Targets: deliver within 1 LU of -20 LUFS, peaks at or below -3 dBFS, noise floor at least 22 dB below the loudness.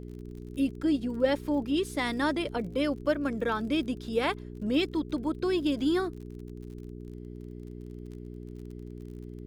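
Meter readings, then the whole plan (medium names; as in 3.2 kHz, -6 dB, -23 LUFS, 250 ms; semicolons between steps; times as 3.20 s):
tick rate 40 per s; hum 60 Hz; highest harmonic 420 Hz; hum level -39 dBFS; loudness -29.5 LUFS; peak level -13.0 dBFS; loudness target -20.0 LUFS
-> de-click; de-hum 60 Hz, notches 7; trim +9.5 dB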